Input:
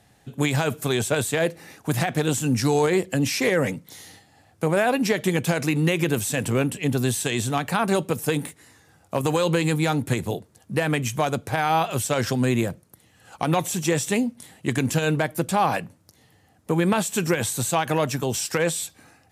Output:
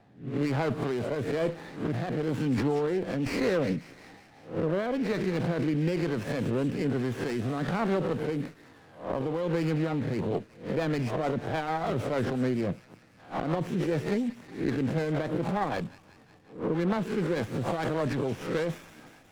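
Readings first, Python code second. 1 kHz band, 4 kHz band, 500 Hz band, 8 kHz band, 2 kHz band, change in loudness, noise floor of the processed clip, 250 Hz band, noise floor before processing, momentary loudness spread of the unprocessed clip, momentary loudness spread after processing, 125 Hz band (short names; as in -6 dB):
-8.5 dB, -12.5 dB, -5.0 dB, -23.0 dB, -10.0 dB, -6.5 dB, -56 dBFS, -4.0 dB, -59 dBFS, 8 LU, 7 LU, -6.0 dB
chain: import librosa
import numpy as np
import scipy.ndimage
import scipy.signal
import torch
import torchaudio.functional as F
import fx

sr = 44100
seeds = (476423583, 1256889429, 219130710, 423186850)

p1 = fx.spec_swells(x, sr, rise_s=0.35)
p2 = scipy.signal.sosfilt(scipy.signal.butter(2, 140.0, 'highpass', fs=sr, output='sos'), p1)
p3 = fx.peak_eq(p2, sr, hz=6100.0, db=-14.5, octaves=1.4)
p4 = fx.over_compress(p3, sr, threshold_db=-29.0, ratio=-0.5)
p5 = p3 + (p4 * librosa.db_to_amplitude(-1.0))
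p6 = fx.rotary_switch(p5, sr, hz=1.1, then_hz=6.7, switch_at_s=9.46)
p7 = fx.air_absorb(p6, sr, metres=140.0)
p8 = p7 + fx.echo_wet_highpass(p7, sr, ms=182, feedback_pct=66, hz=3500.0, wet_db=-6, dry=0)
p9 = fx.running_max(p8, sr, window=9)
y = p9 * librosa.db_to_amplitude(-5.0)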